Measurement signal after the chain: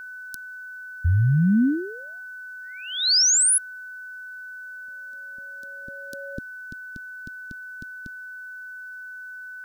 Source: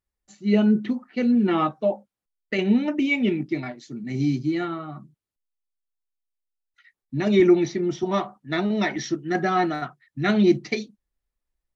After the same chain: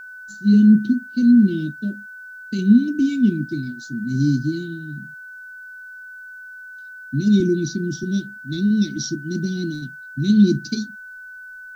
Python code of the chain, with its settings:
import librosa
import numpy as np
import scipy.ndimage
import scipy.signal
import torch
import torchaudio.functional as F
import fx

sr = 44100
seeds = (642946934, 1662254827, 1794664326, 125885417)

y = fx.quant_dither(x, sr, seeds[0], bits=12, dither='triangular')
y = scipy.signal.sosfilt(scipy.signal.ellip(3, 1.0, 80, [260.0, 4500.0], 'bandstop', fs=sr, output='sos'), y)
y = y + 10.0 ** (-43.0 / 20.0) * np.sin(2.0 * np.pi * 1500.0 * np.arange(len(y)) / sr)
y = F.gain(torch.from_numpy(y), 7.5).numpy()